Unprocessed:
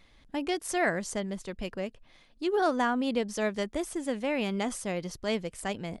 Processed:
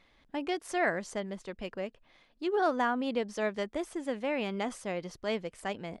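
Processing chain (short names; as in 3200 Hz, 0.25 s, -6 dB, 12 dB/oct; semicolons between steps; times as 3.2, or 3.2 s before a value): LPF 2800 Hz 6 dB/oct; low shelf 210 Hz -9.5 dB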